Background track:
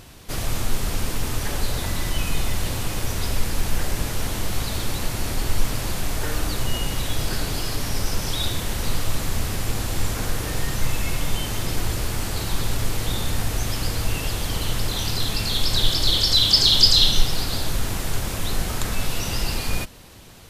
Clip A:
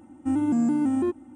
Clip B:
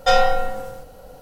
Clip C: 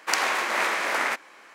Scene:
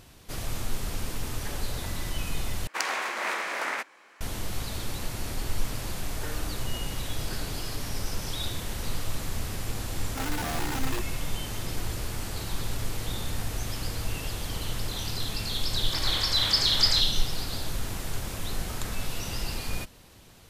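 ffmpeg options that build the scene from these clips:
-filter_complex "[3:a]asplit=2[a][b];[0:a]volume=-7.5dB[c];[1:a]aeval=exprs='(mod(8.91*val(0)+1,2)-1)/8.91':c=same[d];[b]alimiter=limit=-13dB:level=0:latency=1:release=56[e];[c]asplit=2[f][g];[f]atrim=end=2.674[h];[a]atrim=end=1.54,asetpts=PTS-STARTPTS,volume=-5.5dB[i];[g]atrim=start=4.206[j];[d]atrim=end=1.35,asetpts=PTS-STARTPTS,volume=-10.5dB,afade=t=in:d=0.004:c=hsin,afade=t=out:st=1.346:d=0.004:c=hsin,adelay=9900[k];[e]atrim=end=1.54,asetpts=PTS-STARTPTS,volume=-12dB,afade=t=in:d=0.004:c=hsin,afade=t=out:st=1.536:d=0.004:c=hsin,adelay=15850[l];[h][i]acrossfade=d=0.004:c1=hsin:c2=hsin[m];[m][j]acrossfade=d=0.004:c1=hsin:c2=hsin[n];[n][k][l]amix=inputs=3:normalize=0"

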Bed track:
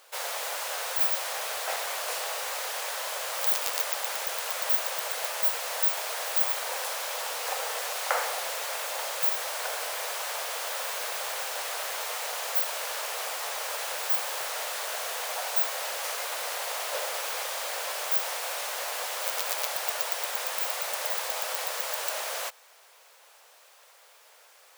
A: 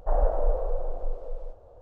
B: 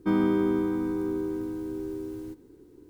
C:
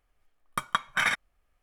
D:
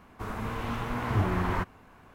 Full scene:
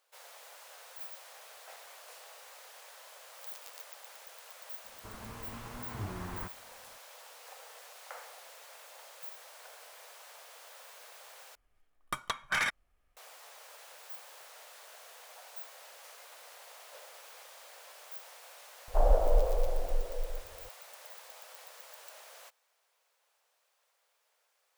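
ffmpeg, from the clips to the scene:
-filter_complex "[0:a]volume=-19.5dB[a];[3:a]aeval=exprs='0.398*sin(PI/2*3.16*val(0)/0.398)':c=same[b];[a]asplit=2[c][d];[c]atrim=end=11.554[e];[b]atrim=end=1.62,asetpts=PTS-STARTPTS,volume=-16dB[f];[d]atrim=start=13.166[g];[4:a]atrim=end=2.14,asetpts=PTS-STARTPTS,volume=-13dB,afade=t=in:d=0.004:c=hsin,afade=t=out:st=2.136:d=0.004:c=hsin,adelay=4840[h];[1:a]atrim=end=1.81,asetpts=PTS-STARTPTS,volume=-1dB,afade=t=in:d=0.004:c=hsin,afade=t=out:st=1.806:d=0.004:c=hsin,adelay=18880[i];[e][f]acrossfade=d=0.004:c1=hsin:c2=hsin[j];[j][g]acrossfade=d=0.004:c1=hsin:c2=hsin[k];[k][h][i]amix=inputs=3:normalize=0"

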